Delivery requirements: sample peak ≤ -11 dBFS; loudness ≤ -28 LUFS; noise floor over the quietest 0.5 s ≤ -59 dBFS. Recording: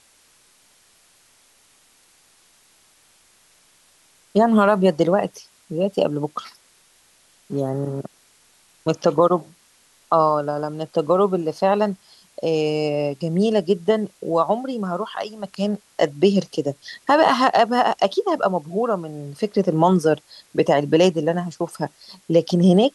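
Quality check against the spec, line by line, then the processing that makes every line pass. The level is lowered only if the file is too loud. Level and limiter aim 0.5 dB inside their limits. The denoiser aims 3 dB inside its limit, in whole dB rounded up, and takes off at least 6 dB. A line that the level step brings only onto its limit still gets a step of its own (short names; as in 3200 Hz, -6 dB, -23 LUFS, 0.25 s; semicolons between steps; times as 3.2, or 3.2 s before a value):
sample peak -4.5 dBFS: fail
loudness -20.5 LUFS: fail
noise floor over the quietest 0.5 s -57 dBFS: fail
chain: gain -8 dB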